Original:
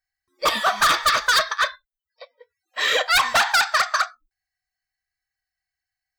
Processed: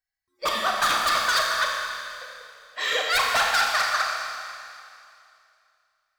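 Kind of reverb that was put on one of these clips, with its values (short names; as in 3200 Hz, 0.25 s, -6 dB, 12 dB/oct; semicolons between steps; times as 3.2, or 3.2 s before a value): Schroeder reverb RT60 2.5 s, combs from 28 ms, DRR 0 dB; gain -6 dB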